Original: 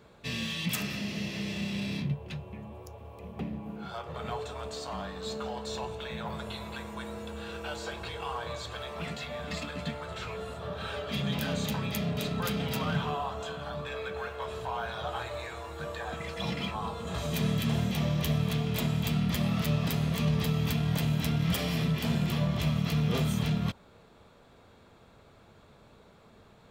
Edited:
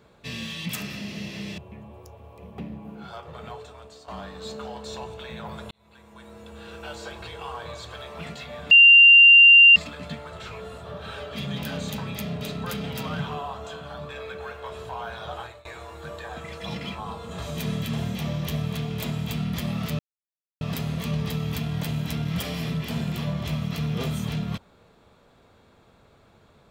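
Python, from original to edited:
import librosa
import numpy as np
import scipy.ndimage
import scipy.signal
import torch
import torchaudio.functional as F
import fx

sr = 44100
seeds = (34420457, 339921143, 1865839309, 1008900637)

y = fx.edit(x, sr, fx.cut(start_s=1.58, length_s=0.81),
    fx.fade_out_to(start_s=3.91, length_s=0.98, floor_db=-12.0),
    fx.fade_in_span(start_s=6.52, length_s=1.19),
    fx.insert_tone(at_s=9.52, length_s=1.05, hz=2780.0, db=-8.0),
    fx.fade_out_to(start_s=15.13, length_s=0.28, floor_db=-23.5),
    fx.insert_silence(at_s=19.75, length_s=0.62), tone=tone)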